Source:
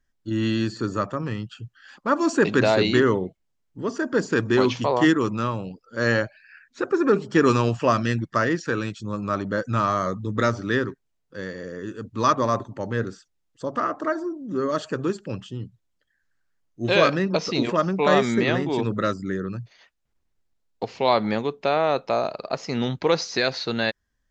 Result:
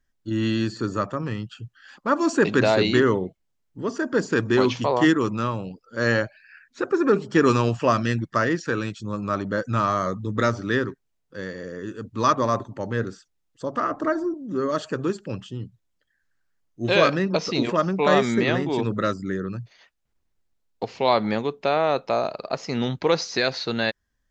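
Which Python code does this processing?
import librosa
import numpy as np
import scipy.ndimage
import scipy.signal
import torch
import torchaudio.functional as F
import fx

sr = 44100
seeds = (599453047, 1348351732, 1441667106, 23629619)

y = fx.low_shelf(x, sr, hz=200.0, db=12.0, at=(13.91, 14.34))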